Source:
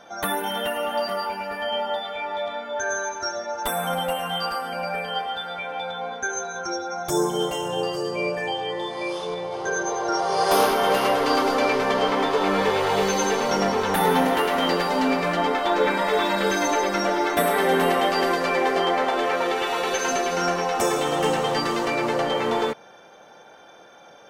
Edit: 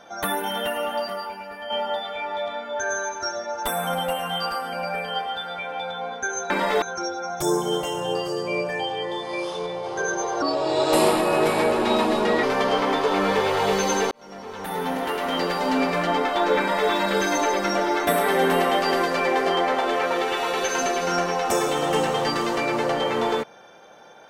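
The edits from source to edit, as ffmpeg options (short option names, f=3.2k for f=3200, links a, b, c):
-filter_complex "[0:a]asplit=7[a][b][c][d][e][f][g];[a]atrim=end=1.7,asetpts=PTS-STARTPTS,afade=t=out:st=0.83:d=0.87:c=qua:silence=0.446684[h];[b]atrim=start=1.7:end=6.502,asetpts=PTS-STARTPTS,afade=t=in:d=0.004:c=hsin:silence=0.446684[i];[c]atrim=start=15.878:end=16.202[j];[d]atrim=start=6.498:end=10.104[k];[e]atrim=start=10.1:end=11.73,asetpts=PTS-STARTPTS,asetrate=35721,aresample=44100,atrim=end_sample=88744,asetpts=PTS-STARTPTS[l];[f]atrim=start=11.726:end=13.41,asetpts=PTS-STARTPTS,afade=t=out:st=1.68:d=0.004:c=hsin[m];[g]atrim=start=13.41,asetpts=PTS-STARTPTS,afade=t=in:d=1.73[n];[h][i]concat=n=2:v=0:a=1[o];[o][j]acrossfade=d=0.004:c1=hsin:c2=hsin[p];[p][k]acrossfade=d=0.004:c1=hsin:c2=hsin[q];[q][l]acrossfade=d=0.004:c1=hsin:c2=hsin[r];[m][n]concat=n=2:v=0:a=1[s];[r][s]acrossfade=d=0.004:c1=hsin:c2=hsin"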